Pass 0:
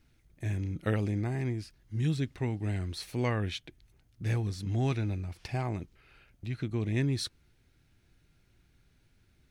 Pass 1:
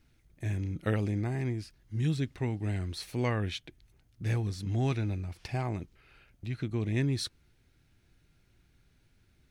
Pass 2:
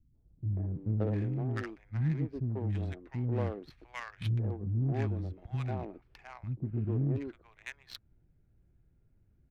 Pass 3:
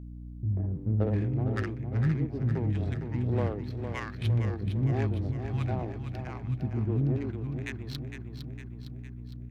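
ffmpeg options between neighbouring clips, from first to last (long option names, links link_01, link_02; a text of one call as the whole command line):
ffmpeg -i in.wav -af anull out.wav
ffmpeg -i in.wav -filter_complex "[0:a]acrossover=split=280|990[link_01][link_02][link_03];[link_02]adelay=140[link_04];[link_03]adelay=700[link_05];[link_01][link_04][link_05]amix=inputs=3:normalize=0,adynamicsmooth=sensitivity=4.5:basefreq=800" out.wav
ffmpeg -i in.wav -filter_complex "[0:a]aeval=exprs='val(0)+0.00631*(sin(2*PI*60*n/s)+sin(2*PI*2*60*n/s)/2+sin(2*PI*3*60*n/s)/3+sin(2*PI*4*60*n/s)/4+sin(2*PI*5*60*n/s)/5)':channel_layout=same,asplit=2[link_01][link_02];[link_02]aecho=0:1:458|916|1374|1832|2290|2748|3206:0.398|0.223|0.125|0.0699|0.0392|0.0219|0.0123[link_03];[link_01][link_03]amix=inputs=2:normalize=0,volume=3.5dB" out.wav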